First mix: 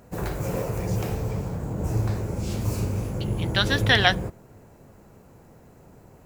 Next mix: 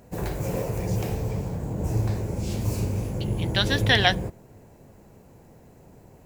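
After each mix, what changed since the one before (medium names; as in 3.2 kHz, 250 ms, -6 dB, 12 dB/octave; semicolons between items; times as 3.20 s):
master: add peaking EQ 1.3 kHz -6.5 dB 0.49 oct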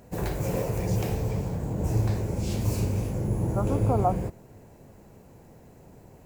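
second voice: add brick-wall FIR low-pass 1.4 kHz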